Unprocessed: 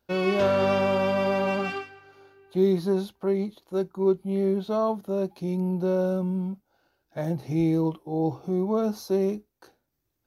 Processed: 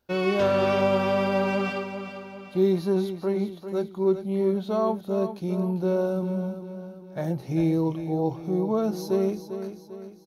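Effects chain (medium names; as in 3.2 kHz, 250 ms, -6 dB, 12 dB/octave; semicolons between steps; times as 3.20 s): feedback delay 397 ms, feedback 46%, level -10 dB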